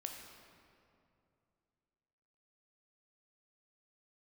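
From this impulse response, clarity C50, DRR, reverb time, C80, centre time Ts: 4.0 dB, 2.0 dB, 2.6 s, 5.0 dB, 65 ms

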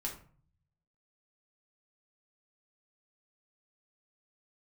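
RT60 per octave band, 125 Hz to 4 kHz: 1.2, 0.70, 0.45, 0.45, 0.40, 0.30 s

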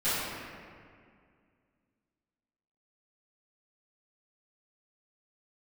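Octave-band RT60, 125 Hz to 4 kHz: 2.5, 2.7, 2.2, 2.0, 1.9, 1.3 s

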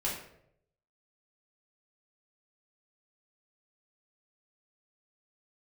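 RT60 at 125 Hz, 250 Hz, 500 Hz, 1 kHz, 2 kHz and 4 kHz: 1.0, 0.75, 0.85, 0.60, 0.60, 0.45 s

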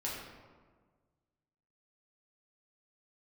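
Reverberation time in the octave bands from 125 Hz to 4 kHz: 2.0, 1.7, 1.6, 1.5, 1.1, 0.80 s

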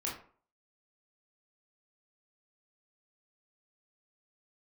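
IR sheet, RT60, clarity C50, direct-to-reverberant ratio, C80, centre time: 0.45 s, 6.0 dB, -4.5 dB, 11.0 dB, 34 ms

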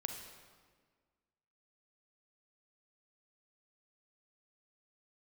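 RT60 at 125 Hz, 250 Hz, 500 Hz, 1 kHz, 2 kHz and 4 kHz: 1.7, 1.9, 1.7, 1.5, 1.4, 1.2 s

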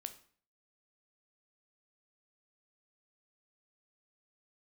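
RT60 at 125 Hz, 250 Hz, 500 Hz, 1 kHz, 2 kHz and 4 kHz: 0.55, 0.55, 0.50, 0.50, 0.45, 0.45 s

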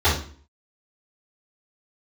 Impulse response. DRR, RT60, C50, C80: -12.5 dB, 0.45 s, 5.0 dB, 11.0 dB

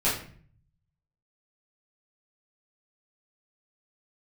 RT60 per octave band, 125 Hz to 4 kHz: 1.2, 0.75, 0.55, 0.45, 0.50, 0.35 s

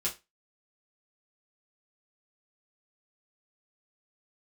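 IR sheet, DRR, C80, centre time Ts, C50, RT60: -6.0 dB, 22.0 dB, 20 ms, 14.0 dB, 0.25 s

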